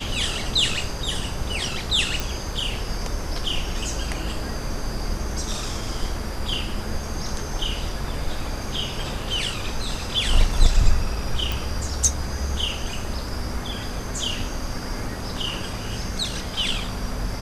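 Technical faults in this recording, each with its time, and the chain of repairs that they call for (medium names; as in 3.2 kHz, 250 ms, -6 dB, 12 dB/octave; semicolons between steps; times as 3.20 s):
2.20 s: pop
11.52 s: pop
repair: de-click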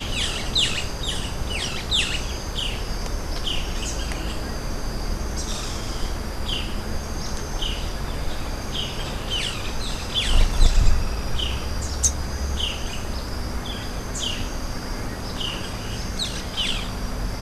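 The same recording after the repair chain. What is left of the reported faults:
nothing left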